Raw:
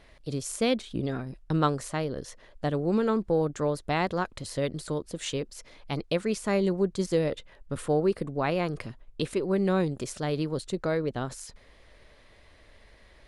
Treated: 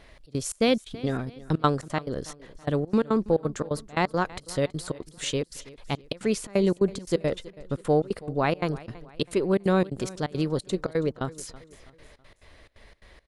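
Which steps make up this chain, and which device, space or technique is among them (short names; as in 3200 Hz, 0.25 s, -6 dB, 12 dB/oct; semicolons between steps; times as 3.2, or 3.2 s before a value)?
trance gate with a delay (step gate "xxx.xx.xx.x." 174 bpm -24 dB; feedback echo 0.326 s, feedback 42%, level -19.5 dB); gain +3.5 dB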